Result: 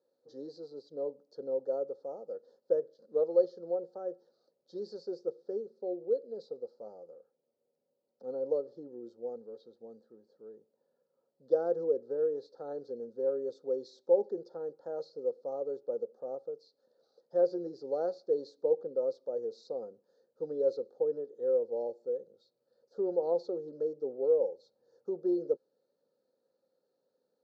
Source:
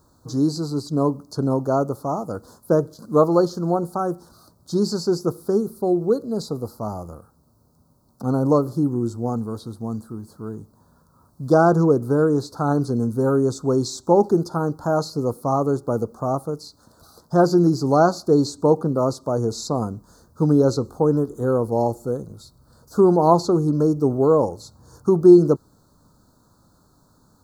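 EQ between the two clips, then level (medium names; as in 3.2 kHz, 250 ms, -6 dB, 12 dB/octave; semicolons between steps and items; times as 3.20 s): vowel filter e; cabinet simulation 270–5400 Hz, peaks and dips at 300 Hz -7 dB, 630 Hz -10 dB, 1.5 kHz -9 dB, 2.1 kHz -10 dB; 0.0 dB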